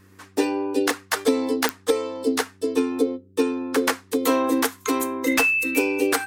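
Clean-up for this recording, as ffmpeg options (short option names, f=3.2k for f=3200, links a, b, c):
-af "adeclick=t=4,bandreject=f=95.9:t=h:w=4,bandreject=f=191.8:t=h:w=4,bandreject=f=287.7:t=h:w=4,bandreject=f=383.6:t=h:w=4"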